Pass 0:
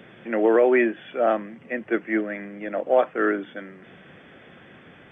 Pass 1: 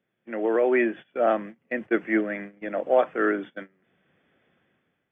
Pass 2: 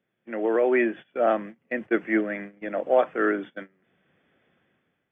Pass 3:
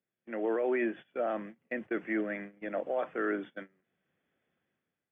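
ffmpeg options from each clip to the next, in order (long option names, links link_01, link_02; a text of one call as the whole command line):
ffmpeg -i in.wav -af "agate=range=-23dB:threshold=-35dB:ratio=16:detection=peak,dynaudnorm=framelen=180:gausssize=7:maxgain=13dB,volume=-8dB" out.wav
ffmpeg -i in.wav -af anull out.wav
ffmpeg -i in.wav -af "agate=range=-8dB:threshold=-58dB:ratio=16:detection=peak,alimiter=limit=-17.5dB:level=0:latency=1:release=22,volume=-5.5dB" out.wav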